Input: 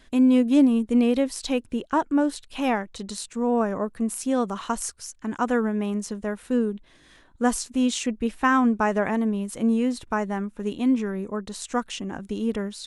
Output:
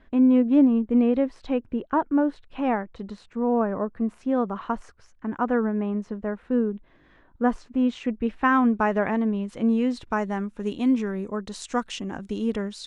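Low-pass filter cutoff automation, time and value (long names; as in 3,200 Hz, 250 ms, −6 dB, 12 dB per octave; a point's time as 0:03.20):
0:07.84 1,700 Hz
0:08.65 3,400 Hz
0:09.50 3,400 Hz
0:10.45 7,200 Hz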